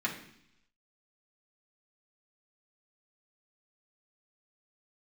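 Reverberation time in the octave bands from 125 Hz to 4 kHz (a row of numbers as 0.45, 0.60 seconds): 0.90, 0.85, 0.70, 0.70, 0.85, 0.95 seconds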